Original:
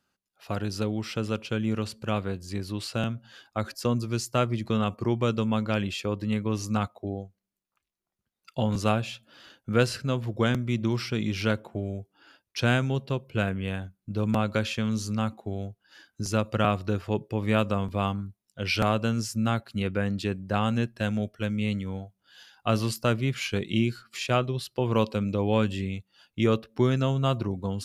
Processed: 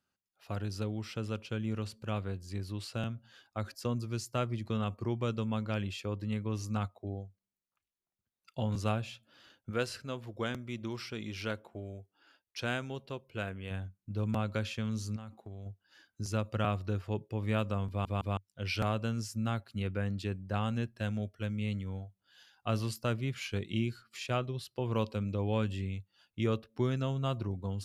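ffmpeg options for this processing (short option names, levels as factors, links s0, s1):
-filter_complex "[0:a]asettb=1/sr,asplit=3[s0][s1][s2];[s0]atrim=end=9.704[s3];[s1]atrim=start=9.7:end=13.71,asetpts=PTS-STARTPTS,afade=t=in:d=0.004:c=qsin,afade=t=out:st=4.006:d=0.004:c=qsin,equalizer=f=120:w=0.71:g=-8.5[s4];[s2]atrim=start=13.706[s5];[s3][s4]acrossfade=d=0.004:c1=hsin:c2=qsin[s6];[s6][s5]acrossfade=d=0.004:c1=qsin:c2=hsin,asettb=1/sr,asplit=3[s7][s8][s9];[s7]atrim=end=15.164[s10];[s8]atrim=start=15.16:end=15.66,asetpts=PTS-STARTPTS,afade=t=in:d=0.004:c=qsin,afade=t=out:st=0.496:d=0.004:c=qsin,acompressor=threshold=0.02:ratio=6:attack=3.2:release=140:knee=1:detection=peak[s11];[s9]atrim=start=15.656[s12];[s10][s11]acrossfade=d=0.004:c1=hsin:c2=qsin[s13];[s13][s12]acrossfade=d=0.004:c1=qsin:c2=hsin,asplit=4[s14][s15][s16][s17];[s14]atrim=end=18.052[s18];[s15]atrim=start=17.888:end=18.052[s19];[s16]atrim=start=17.888:end=18.052[s20];[s17]atrim=start=18.368[s21];[s18][s19]acrossfade=d=0.004:c1=hsin:c2=hsin[s22];[s22][s20]acrossfade=d=0.004:c1=hsin:c2=hsin[s23];[s23][s21]acrossfade=d=0.004:c1=hsin:c2=hsin,equalizer=f=97:t=o:w=0.43:g=6,volume=0.376"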